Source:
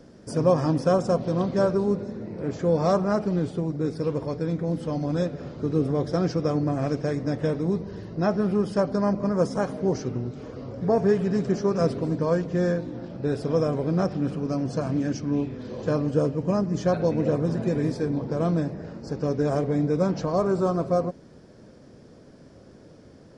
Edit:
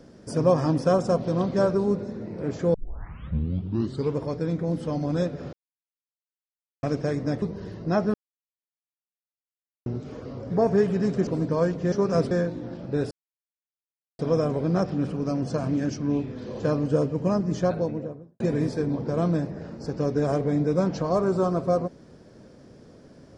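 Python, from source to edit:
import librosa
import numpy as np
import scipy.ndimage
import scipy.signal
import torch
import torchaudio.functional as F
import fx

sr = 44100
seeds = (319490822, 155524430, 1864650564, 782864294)

y = fx.studio_fade_out(x, sr, start_s=16.72, length_s=0.91)
y = fx.edit(y, sr, fx.tape_start(start_s=2.74, length_s=1.43),
    fx.silence(start_s=5.53, length_s=1.3),
    fx.cut(start_s=7.42, length_s=0.31),
    fx.silence(start_s=8.45, length_s=1.72),
    fx.move(start_s=11.58, length_s=0.39, to_s=12.62),
    fx.insert_silence(at_s=13.42, length_s=1.08), tone=tone)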